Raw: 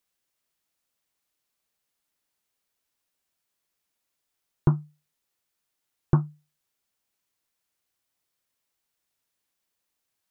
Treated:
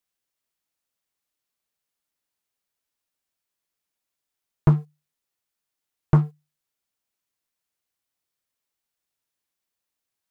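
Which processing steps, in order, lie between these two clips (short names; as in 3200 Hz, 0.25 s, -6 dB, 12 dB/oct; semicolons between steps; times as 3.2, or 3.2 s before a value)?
sample leveller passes 2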